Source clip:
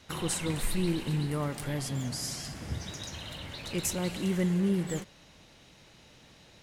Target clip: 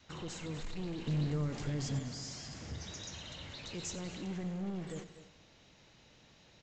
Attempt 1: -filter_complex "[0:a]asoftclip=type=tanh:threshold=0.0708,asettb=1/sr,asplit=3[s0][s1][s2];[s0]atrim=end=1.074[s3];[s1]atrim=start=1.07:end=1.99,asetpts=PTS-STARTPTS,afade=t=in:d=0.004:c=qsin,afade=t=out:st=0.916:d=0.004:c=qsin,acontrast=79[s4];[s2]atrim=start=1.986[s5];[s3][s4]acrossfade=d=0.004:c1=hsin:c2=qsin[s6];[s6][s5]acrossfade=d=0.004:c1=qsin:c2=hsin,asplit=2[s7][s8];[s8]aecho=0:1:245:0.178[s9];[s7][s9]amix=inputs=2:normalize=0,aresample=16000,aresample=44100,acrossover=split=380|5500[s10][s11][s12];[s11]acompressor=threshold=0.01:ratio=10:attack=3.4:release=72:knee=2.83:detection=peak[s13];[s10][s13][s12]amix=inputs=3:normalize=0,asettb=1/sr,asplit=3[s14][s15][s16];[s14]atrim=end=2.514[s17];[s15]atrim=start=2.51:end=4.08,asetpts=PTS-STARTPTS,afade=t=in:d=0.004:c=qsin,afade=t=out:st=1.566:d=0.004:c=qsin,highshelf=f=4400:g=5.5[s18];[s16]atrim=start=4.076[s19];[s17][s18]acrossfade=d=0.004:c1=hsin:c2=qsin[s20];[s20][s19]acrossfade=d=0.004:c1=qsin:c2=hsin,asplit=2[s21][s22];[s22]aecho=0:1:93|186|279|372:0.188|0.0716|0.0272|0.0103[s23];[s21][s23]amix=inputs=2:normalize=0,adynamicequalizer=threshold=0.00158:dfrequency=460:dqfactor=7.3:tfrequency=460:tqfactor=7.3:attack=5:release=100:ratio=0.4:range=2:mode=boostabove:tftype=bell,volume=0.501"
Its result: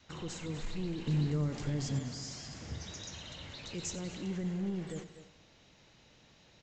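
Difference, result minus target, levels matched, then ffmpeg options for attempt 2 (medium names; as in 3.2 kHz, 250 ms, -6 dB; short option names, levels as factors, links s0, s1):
saturation: distortion -8 dB
-filter_complex "[0:a]asoftclip=type=tanh:threshold=0.0335,asettb=1/sr,asplit=3[s0][s1][s2];[s0]atrim=end=1.074[s3];[s1]atrim=start=1.07:end=1.99,asetpts=PTS-STARTPTS,afade=t=in:d=0.004:c=qsin,afade=t=out:st=0.916:d=0.004:c=qsin,acontrast=79[s4];[s2]atrim=start=1.986[s5];[s3][s4]acrossfade=d=0.004:c1=hsin:c2=qsin[s6];[s6][s5]acrossfade=d=0.004:c1=qsin:c2=hsin,asplit=2[s7][s8];[s8]aecho=0:1:245:0.178[s9];[s7][s9]amix=inputs=2:normalize=0,aresample=16000,aresample=44100,acrossover=split=380|5500[s10][s11][s12];[s11]acompressor=threshold=0.01:ratio=10:attack=3.4:release=72:knee=2.83:detection=peak[s13];[s10][s13][s12]amix=inputs=3:normalize=0,asettb=1/sr,asplit=3[s14][s15][s16];[s14]atrim=end=2.514[s17];[s15]atrim=start=2.51:end=4.08,asetpts=PTS-STARTPTS,afade=t=in:d=0.004:c=qsin,afade=t=out:st=1.566:d=0.004:c=qsin,highshelf=f=4400:g=5.5[s18];[s16]atrim=start=4.076[s19];[s17][s18]acrossfade=d=0.004:c1=hsin:c2=qsin[s20];[s20][s19]acrossfade=d=0.004:c1=qsin:c2=hsin,asplit=2[s21][s22];[s22]aecho=0:1:93|186|279|372:0.188|0.0716|0.0272|0.0103[s23];[s21][s23]amix=inputs=2:normalize=0,adynamicequalizer=threshold=0.00158:dfrequency=460:dqfactor=7.3:tfrequency=460:tqfactor=7.3:attack=5:release=100:ratio=0.4:range=2:mode=boostabove:tftype=bell,volume=0.501"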